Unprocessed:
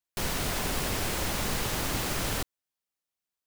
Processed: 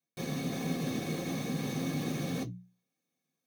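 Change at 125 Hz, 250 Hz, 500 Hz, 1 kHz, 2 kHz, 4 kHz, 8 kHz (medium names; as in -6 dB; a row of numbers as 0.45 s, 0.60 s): -0.5 dB, +3.5 dB, -3.5 dB, -9.5 dB, -9.0 dB, -10.5 dB, -12.0 dB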